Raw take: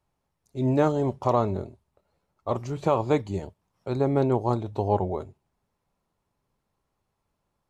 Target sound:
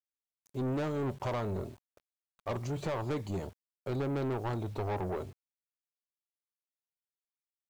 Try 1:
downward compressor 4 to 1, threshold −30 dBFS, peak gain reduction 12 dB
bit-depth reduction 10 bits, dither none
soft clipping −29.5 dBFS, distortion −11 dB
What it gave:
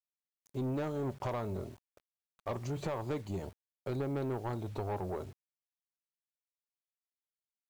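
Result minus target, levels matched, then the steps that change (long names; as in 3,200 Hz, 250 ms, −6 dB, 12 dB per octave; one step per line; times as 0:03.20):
downward compressor: peak gain reduction +5 dB
change: downward compressor 4 to 1, threshold −23 dBFS, peak gain reduction 6.5 dB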